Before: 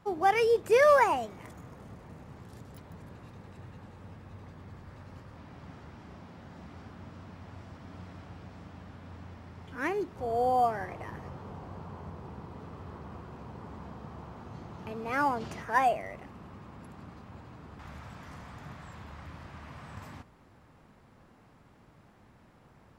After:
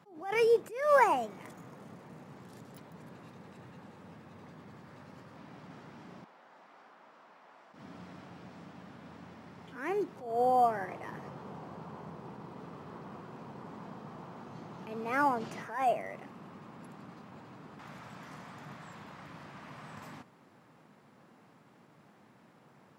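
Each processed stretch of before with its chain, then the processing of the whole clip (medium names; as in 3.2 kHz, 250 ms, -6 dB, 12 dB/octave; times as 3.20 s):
6.24–7.74 s: high-pass 700 Hz + treble shelf 2.4 kHz -10.5 dB
whole clip: high-pass 140 Hz 24 dB/octave; dynamic bell 4.1 kHz, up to -4 dB, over -49 dBFS, Q 1.1; attacks held to a fixed rise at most 100 dB/s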